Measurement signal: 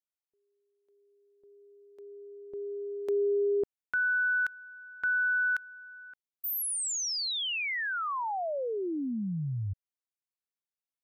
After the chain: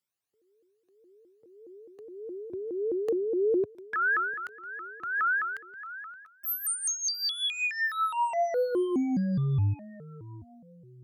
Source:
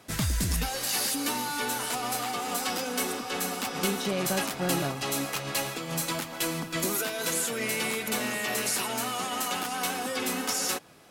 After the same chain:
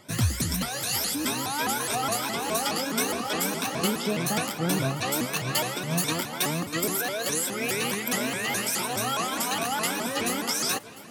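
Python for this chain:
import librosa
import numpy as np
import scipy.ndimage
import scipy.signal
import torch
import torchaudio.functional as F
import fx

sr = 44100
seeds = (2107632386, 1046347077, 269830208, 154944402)

y = fx.spec_ripple(x, sr, per_octave=1.6, drift_hz=1.7, depth_db=12)
y = scipy.signal.sosfilt(scipy.signal.butter(4, 92.0, 'highpass', fs=sr, output='sos'), y)
y = fx.low_shelf(y, sr, hz=140.0, db=7.0)
y = fx.rider(y, sr, range_db=4, speed_s=0.5)
y = fx.echo_feedback(y, sr, ms=700, feedback_pct=44, wet_db=-19)
y = fx.vibrato_shape(y, sr, shape='saw_up', rate_hz=4.8, depth_cents=250.0)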